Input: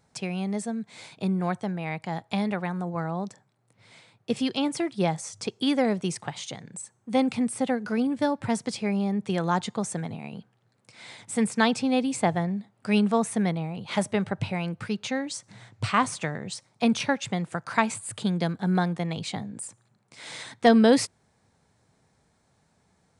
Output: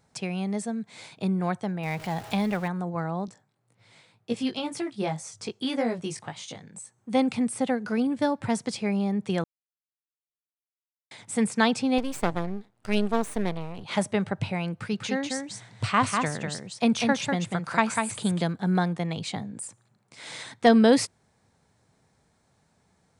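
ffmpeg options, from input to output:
ffmpeg -i in.wav -filter_complex "[0:a]asettb=1/sr,asplit=3[link_01][link_02][link_03];[link_01]atrim=end=1.834[link_04];[link_02]atrim=start=1.83:end=2.68,asetpts=PTS-STARTPTS,afade=type=in:duration=0.004:curve=qsin,afade=type=out:start_time=0.846:duration=0.004:curve=qsin,aeval=exprs='val(0)+0.5*0.0141*sgn(val(0))':channel_layout=same[link_05];[link_03]atrim=start=2.676[link_06];[link_04][link_05]acrossfade=duration=0.004:curve1=hsin:curve2=qsin[link_07];[link_07][link_06]acrossfade=duration=0.004:curve1=qsin:curve2=hsin,asettb=1/sr,asplit=3[link_08][link_09][link_10];[link_08]atrim=end=3.264[link_11];[link_09]atrim=start=3.26:end=6.98,asetpts=PTS-STARTPTS,afade=type=in:duration=0.004:curve=qsin,afade=type=out:start_time=3.716:duration=0.004:curve=qsin,flanger=delay=17:depth=3.1:speed=1.9[link_12];[link_10]atrim=start=6.976[link_13];[link_11][link_12]acrossfade=duration=0.004:curve1=hsin:curve2=qsin[link_14];[link_14][link_13]acrossfade=duration=0.004:curve1=qsin:curve2=hsin,asettb=1/sr,asplit=3[link_15][link_16][link_17];[link_15]atrim=end=11.984[link_18];[link_16]atrim=start=11.98:end=13.84,asetpts=PTS-STARTPTS,afade=type=in:duration=0.004:curve=qsin,afade=type=out:start_time=1.856:duration=0.004:curve=qsin,aeval=exprs='max(val(0),0)':channel_layout=same[link_19];[link_17]atrim=start=13.836[link_20];[link_18][link_19]acrossfade=duration=0.004:curve1=hsin:curve2=qsin[link_21];[link_21][link_20]acrossfade=duration=0.004:curve1=qsin:curve2=hsin,asettb=1/sr,asplit=3[link_22][link_23][link_24];[link_22]atrim=end=14.734[link_25];[link_23]atrim=start=14.73:end=18.43,asetpts=PTS-STARTPTS,afade=type=in:duration=0.004:curve=qsin,afade=type=out:start_time=3.696:duration=0.004:curve=qsin,aecho=1:1:196:0.596,atrim=end_sample=163170[link_26];[link_24]atrim=start=18.426[link_27];[link_25][link_26]acrossfade=duration=0.004:curve1=hsin:curve2=qsin[link_28];[link_28][link_27]acrossfade=duration=0.004:curve1=qsin:curve2=hsin,asplit=3[link_29][link_30][link_31];[link_29]atrim=end=9.44,asetpts=PTS-STARTPTS,afade=type=out:start_time=9.436:duration=0.004:curve=hsin[link_32];[link_30]atrim=start=9.44:end=11.11,asetpts=PTS-STARTPTS,volume=0[link_33];[link_31]atrim=start=11.11,asetpts=PTS-STARTPTS,afade=type=in:duration=0.004:curve=hsin[link_34];[link_32][link_33][link_34]concat=n=3:v=0:a=1" out.wav

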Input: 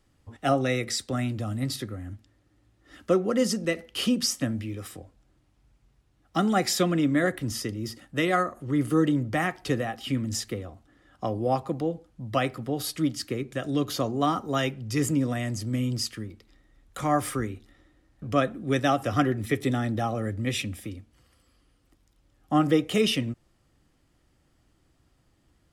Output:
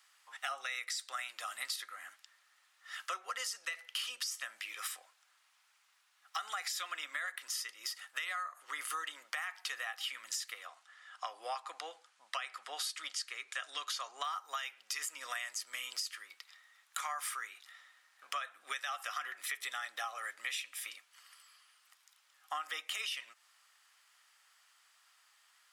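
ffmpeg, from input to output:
ffmpeg -i in.wav -filter_complex "[0:a]asettb=1/sr,asplit=3[link_01][link_02][link_03];[link_01]atrim=end=10.674[link_04];[link_02]atrim=start=10.67:end=14.24,asetpts=PTS-STARTPTS,afade=type=in:duration=0.004:curve=qsin,afade=type=out:start_time=3.566:duration=0.004:curve=qsin,lowpass=frequency=9900:width=0.5412,lowpass=frequency=9900:width=1.3066[link_05];[link_03]atrim=start=14.236[link_06];[link_04][link_05]acrossfade=duration=0.004:curve1=hsin:curve2=qsin[link_07];[link_07][link_06]acrossfade=duration=0.004:curve1=qsin:curve2=hsin,highpass=frequency=1100:width=0.5412,highpass=frequency=1100:width=1.3066,alimiter=limit=-23.5dB:level=0:latency=1,acompressor=threshold=-45dB:ratio=6,volume=8dB" out.wav

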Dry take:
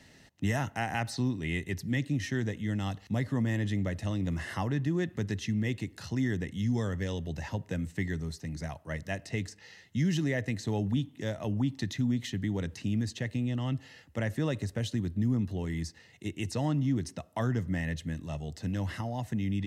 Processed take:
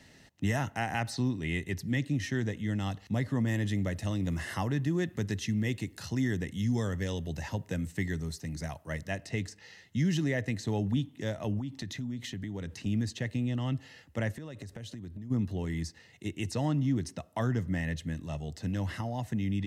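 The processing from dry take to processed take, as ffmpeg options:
ffmpeg -i in.wav -filter_complex "[0:a]asettb=1/sr,asplit=3[link_01][link_02][link_03];[link_01]atrim=end=3.474[link_04];[link_02]atrim=start=3.47:end=9.04,asetpts=PTS-STARTPTS,afade=type=in:duration=0.004:curve=qsin,afade=type=out:start_time=5.566:duration=0.004:curve=qsin,highshelf=frequency=7200:gain=7.5[link_05];[link_03]atrim=start=9.036[link_06];[link_04][link_05]acrossfade=duration=0.004:curve1=hsin:curve2=qsin[link_07];[link_07][link_06]acrossfade=duration=0.004:curve1=qsin:curve2=hsin,asettb=1/sr,asplit=3[link_08][link_09][link_10];[link_08]atrim=end=11.594[link_11];[link_09]atrim=start=11.59:end=12.86,asetpts=PTS-STARTPTS,afade=type=in:duration=0.004:curve=qsin,afade=type=out:start_time=1.266:duration=0.004:curve=qsin,acompressor=threshold=-35dB:ratio=3:attack=3.2:release=140:knee=1:detection=peak[link_12];[link_10]atrim=start=12.856[link_13];[link_11][link_12]acrossfade=duration=0.004:curve1=hsin:curve2=qsin[link_14];[link_14][link_13]acrossfade=duration=0.004:curve1=qsin:curve2=hsin,asplit=3[link_15][link_16][link_17];[link_15]afade=type=out:start_time=14.31:duration=0.02[link_18];[link_16]acompressor=threshold=-38dB:ratio=12:attack=3.2:release=140:knee=1:detection=peak,afade=type=in:start_time=14.31:duration=0.02,afade=type=out:start_time=15.3:duration=0.02[link_19];[link_17]afade=type=in:start_time=15.3:duration=0.02[link_20];[link_18][link_19][link_20]amix=inputs=3:normalize=0" out.wav

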